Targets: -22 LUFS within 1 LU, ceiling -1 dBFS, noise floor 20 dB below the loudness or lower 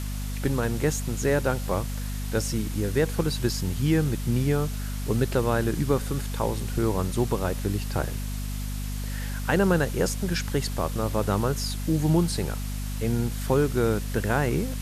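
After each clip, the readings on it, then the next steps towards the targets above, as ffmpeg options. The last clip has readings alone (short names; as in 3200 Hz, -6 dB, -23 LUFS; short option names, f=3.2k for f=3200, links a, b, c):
hum 50 Hz; harmonics up to 250 Hz; hum level -28 dBFS; noise floor -31 dBFS; noise floor target -47 dBFS; loudness -26.5 LUFS; peak -9.0 dBFS; loudness target -22.0 LUFS
-> -af "bandreject=f=50:t=h:w=6,bandreject=f=100:t=h:w=6,bandreject=f=150:t=h:w=6,bandreject=f=200:t=h:w=6,bandreject=f=250:t=h:w=6"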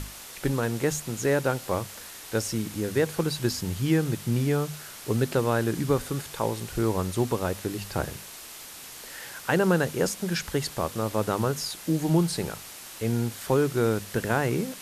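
hum none; noise floor -43 dBFS; noise floor target -48 dBFS
-> -af "afftdn=nr=6:nf=-43"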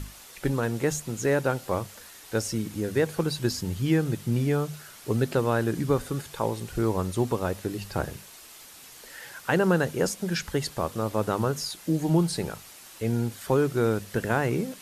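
noise floor -48 dBFS; loudness -27.5 LUFS; peak -9.0 dBFS; loudness target -22.0 LUFS
-> -af "volume=5.5dB"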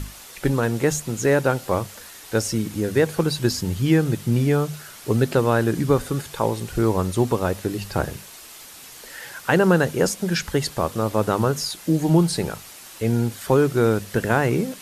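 loudness -22.0 LUFS; peak -3.5 dBFS; noise floor -42 dBFS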